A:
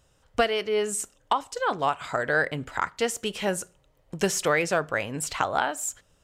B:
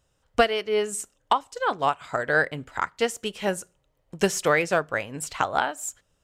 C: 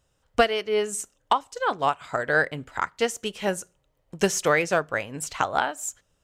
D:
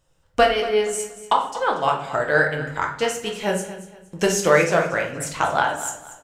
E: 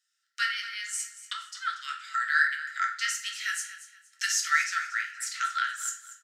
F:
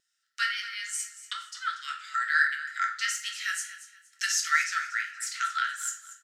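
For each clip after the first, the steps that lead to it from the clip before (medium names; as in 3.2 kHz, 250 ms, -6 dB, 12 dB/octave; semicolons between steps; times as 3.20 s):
upward expansion 1.5:1, over -38 dBFS; trim +4 dB
dynamic bell 6.2 kHz, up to +5 dB, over -53 dBFS, Q 6
feedback delay 235 ms, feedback 30%, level -14.5 dB; simulated room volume 98 m³, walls mixed, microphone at 0.71 m; trim +1 dB
level rider gain up to 7 dB; rippled Chebyshev high-pass 1.3 kHz, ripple 9 dB; trim -1 dB
wow and flutter 23 cents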